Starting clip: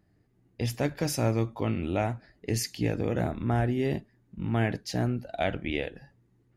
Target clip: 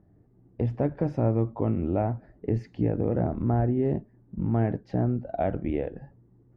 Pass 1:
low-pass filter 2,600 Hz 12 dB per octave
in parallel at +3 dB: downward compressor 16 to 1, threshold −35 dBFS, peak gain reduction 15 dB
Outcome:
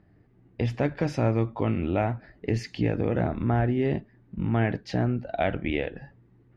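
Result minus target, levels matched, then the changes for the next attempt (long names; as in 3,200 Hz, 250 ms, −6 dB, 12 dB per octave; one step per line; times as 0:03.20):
2,000 Hz band +12.0 dB
change: low-pass filter 850 Hz 12 dB per octave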